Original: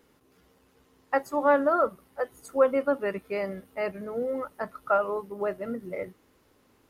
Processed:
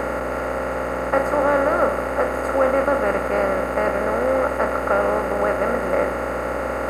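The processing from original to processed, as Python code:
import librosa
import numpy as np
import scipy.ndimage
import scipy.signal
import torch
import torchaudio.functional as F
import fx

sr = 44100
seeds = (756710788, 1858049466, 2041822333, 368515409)

y = fx.bin_compress(x, sr, power=0.2)
y = fx.add_hum(y, sr, base_hz=60, snr_db=15)
y = F.gain(torch.from_numpy(y), -1.5).numpy()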